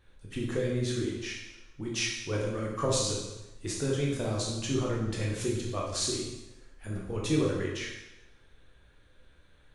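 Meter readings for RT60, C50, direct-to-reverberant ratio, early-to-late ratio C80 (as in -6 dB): 1.0 s, 2.0 dB, -3.5 dB, 5.0 dB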